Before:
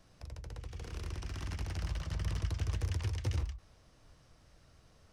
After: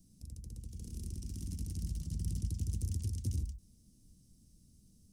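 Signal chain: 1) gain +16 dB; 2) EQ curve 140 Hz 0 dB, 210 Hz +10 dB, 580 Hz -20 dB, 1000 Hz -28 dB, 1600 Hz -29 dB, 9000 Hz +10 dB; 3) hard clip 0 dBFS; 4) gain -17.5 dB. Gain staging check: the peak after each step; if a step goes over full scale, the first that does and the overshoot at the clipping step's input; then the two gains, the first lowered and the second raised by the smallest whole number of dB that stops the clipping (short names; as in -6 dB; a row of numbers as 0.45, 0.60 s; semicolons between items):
-6.0, -5.5, -5.5, -23.0 dBFS; no overload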